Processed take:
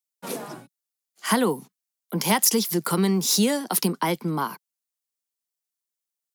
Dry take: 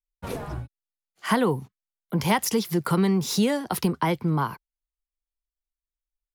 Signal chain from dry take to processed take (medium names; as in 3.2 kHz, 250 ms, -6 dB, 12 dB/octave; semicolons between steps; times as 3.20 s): steep high-pass 180 Hz 36 dB/octave; tone controls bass +2 dB, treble +10 dB